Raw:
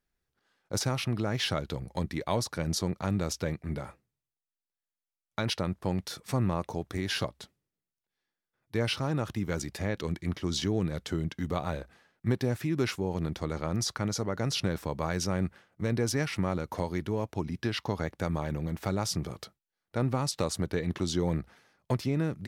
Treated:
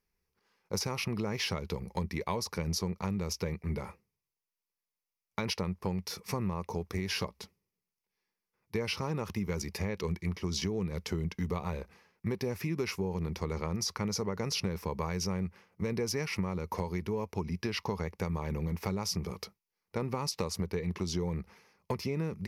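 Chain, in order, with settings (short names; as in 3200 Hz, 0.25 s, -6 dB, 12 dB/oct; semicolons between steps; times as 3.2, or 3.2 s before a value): ripple EQ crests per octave 0.83, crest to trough 9 dB; compressor, threshold -29 dBFS, peak gain reduction 8.5 dB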